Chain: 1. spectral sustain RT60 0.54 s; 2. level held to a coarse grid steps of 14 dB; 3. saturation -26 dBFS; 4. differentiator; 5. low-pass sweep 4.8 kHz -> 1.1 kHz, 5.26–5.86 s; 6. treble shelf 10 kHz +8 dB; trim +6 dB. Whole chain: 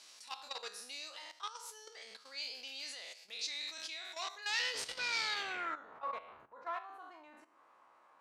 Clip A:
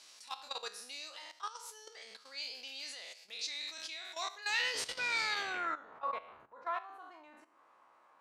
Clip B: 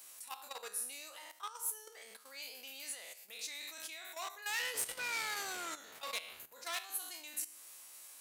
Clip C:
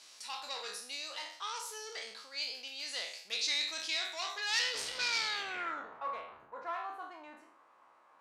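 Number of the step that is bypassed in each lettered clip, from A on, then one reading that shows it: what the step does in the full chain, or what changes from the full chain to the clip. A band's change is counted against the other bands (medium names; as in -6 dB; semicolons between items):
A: 3, distortion -14 dB; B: 5, 8 kHz band +8.5 dB; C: 2, momentary loudness spread change -4 LU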